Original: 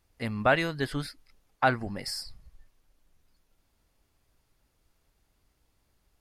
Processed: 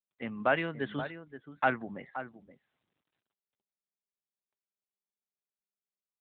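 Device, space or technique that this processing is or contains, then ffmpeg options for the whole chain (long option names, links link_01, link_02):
mobile call with aggressive noise cancelling: -filter_complex "[0:a]agate=range=-33dB:threshold=-58dB:ratio=3:detection=peak,asettb=1/sr,asplit=3[link_01][link_02][link_03];[link_01]atrim=end=0.864[link_04];[link_02]atrim=start=0.86:end=1.77,asetpts=PTS-STARTPTS,afade=type=in:duration=0.004:curve=qsin,afade=type=out:start_time=0.906:duration=0.004:curve=qsin,highshelf=frequency=2700:gain=5.5[link_05];[link_03]atrim=start=1.766[link_06];[link_04][link_05]acrossfade=duration=0.004:curve1=hsin:curve2=qsin[link_07];[link_07][link_06]acrossfade=duration=0.004:curve1=qsin:curve2=hsin,highpass=frequency=150:width=0.5412,highpass=frequency=150:width=1.3066,asplit=2[link_08][link_09];[link_09]adelay=524.8,volume=-11dB,highshelf=frequency=4000:gain=-11.8[link_10];[link_08][link_10]amix=inputs=2:normalize=0,afftdn=noise_reduction=14:noise_floor=-48,volume=-3.5dB" -ar 8000 -c:a libopencore_amrnb -b:a 12200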